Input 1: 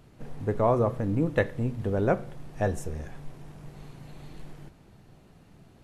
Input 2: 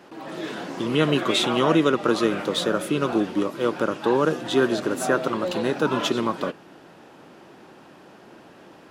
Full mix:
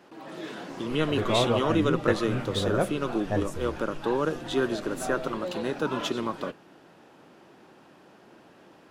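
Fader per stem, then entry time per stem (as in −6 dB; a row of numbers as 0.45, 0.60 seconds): −2.0, −6.0 decibels; 0.70, 0.00 seconds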